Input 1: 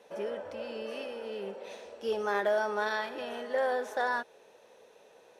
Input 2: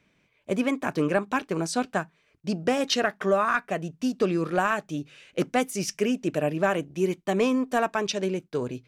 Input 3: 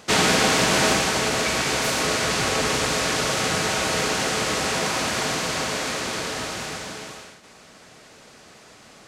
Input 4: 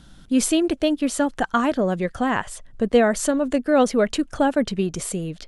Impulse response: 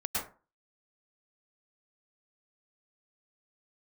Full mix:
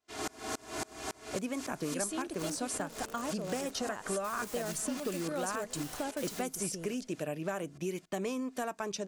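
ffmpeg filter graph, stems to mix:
-filter_complex "[0:a]lowshelf=f=260:g=7.5,aeval=exprs='(mod(31.6*val(0)+1,2)-1)/31.6':c=same,adelay=2200,volume=0.422[s0];[1:a]adelay=850,volume=0.891[s1];[2:a]aecho=1:1:2.9:0.94,aeval=exprs='val(0)*pow(10,-31*if(lt(mod(-3.6*n/s,1),2*abs(-3.6)/1000),1-mod(-3.6*n/s,1)/(2*abs(-3.6)/1000),(mod(-3.6*n/s,1)-2*abs(-3.6)/1000)/(1-2*abs(-3.6)/1000))/20)':c=same,volume=0.266[s2];[3:a]bass=f=250:g=-5,treble=f=4000:g=11,adelay=1600,volume=0.299[s3];[s0][s1][s2][s3]amix=inputs=4:normalize=0,acrossover=split=1500|5900[s4][s5][s6];[s4]acompressor=threshold=0.0178:ratio=4[s7];[s5]acompressor=threshold=0.00316:ratio=4[s8];[s6]acompressor=threshold=0.0126:ratio=4[s9];[s7][s8][s9]amix=inputs=3:normalize=0"

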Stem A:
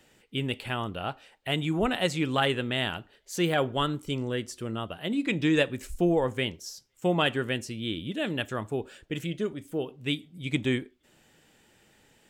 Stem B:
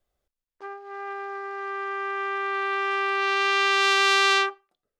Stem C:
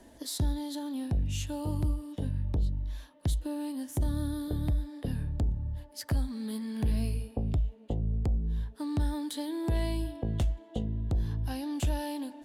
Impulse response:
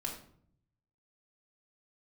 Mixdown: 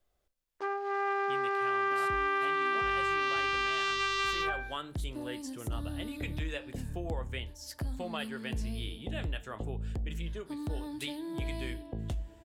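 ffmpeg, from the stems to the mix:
-filter_complex "[0:a]alimiter=limit=0.141:level=0:latency=1:release=477,acrossover=split=480[s0][s1];[s0]acompressor=threshold=0.00447:ratio=2[s2];[s2][s1]amix=inputs=2:normalize=0,flanger=delay=5:depth=9:regen=-72:speed=0.44:shape=triangular,adelay=950,volume=0.794[s3];[1:a]bandreject=f=261.4:t=h:w=4,bandreject=f=522.8:t=h:w=4,bandreject=f=784.2:t=h:w=4,bandreject=f=1045.6:t=h:w=4,bandreject=f=1307:t=h:w=4,bandreject=f=1568.4:t=h:w=4,bandreject=f=1829.8:t=h:w=4,bandreject=f=2091.2:t=h:w=4,bandreject=f=2352.6:t=h:w=4,acontrast=51,volume=0.473,asplit=2[s4][s5];[s5]volume=0.2[s6];[2:a]adelay=1700,volume=0.178,asplit=2[s7][s8];[s8]volume=0.422[s9];[s4][s7]amix=inputs=2:normalize=0,dynaudnorm=f=110:g=11:m=2.82,alimiter=limit=0.188:level=0:latency=1,volume=1[s10];[3:a]atrim=start_sample=2205[s11];[s6][s9]amix=inputs=2:normalize=0[s12];[s12][s11]afir=irnorm=-1:irlink=0[s13];[s3][s10][s13]amix=inputs=3:normalize=0,acompressor=threshold=0.0224:ratio=2"

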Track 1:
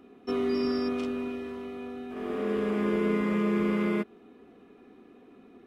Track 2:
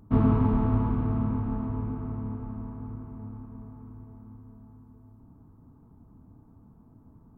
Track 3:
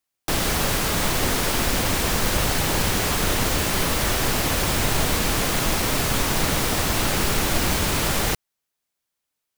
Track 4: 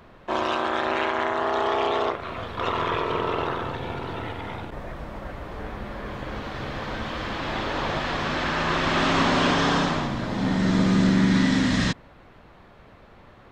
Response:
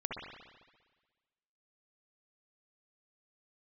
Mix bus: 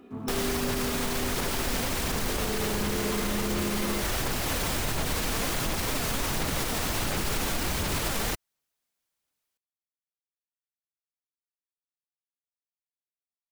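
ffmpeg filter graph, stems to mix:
-filter_complex "[0:a]volume=1.26[s0];[1:a]highpass=140,aeval=exprs='val(0)*gte(abs(val(0)),0.00668)':c=same,volume=0.2[s1];[2:a]aphaser=in_gain=1:out_gain=1:delay=4.5:decay=0.24:speed=1.4:type=sinusoidal,volume=0.794[s2];[s0][s1][s2]amix=inputs=3:normalize=0,alimiter=limit=0.112:level=0:latency=1:release=85"

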